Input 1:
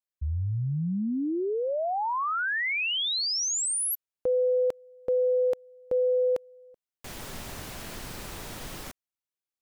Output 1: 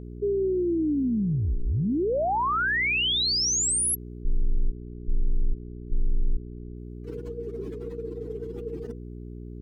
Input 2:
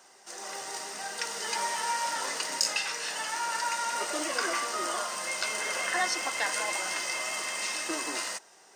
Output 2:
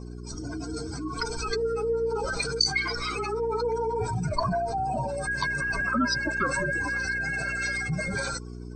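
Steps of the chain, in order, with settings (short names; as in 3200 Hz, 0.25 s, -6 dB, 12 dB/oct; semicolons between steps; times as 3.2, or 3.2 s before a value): spectral contrast raised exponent 2.8; frequency shift -480 Hz; buzz 60 Hz, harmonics 7, -43 dBFS -4 dB/oct; gain +4 dB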